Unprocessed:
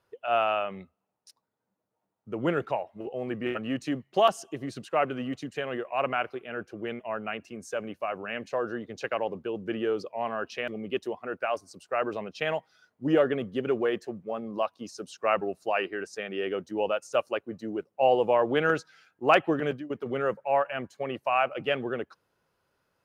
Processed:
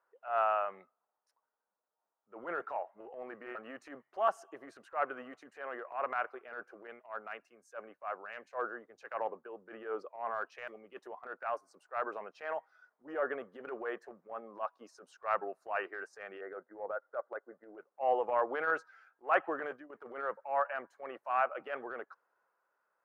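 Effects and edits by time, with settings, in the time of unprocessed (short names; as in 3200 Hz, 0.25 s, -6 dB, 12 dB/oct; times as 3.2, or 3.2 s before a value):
6.87–11 three-band expander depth 100%
16.41–17.78 rippled Chebyshev low-pass 2100 Hz, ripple 6 dB
whole clip: HPF 640 Hz 12 dB/oct; resonant high shelf 2200 Hz -14 dB, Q 1.5; transient shaper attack -10 dB, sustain +2 dB; gain -3.5 dB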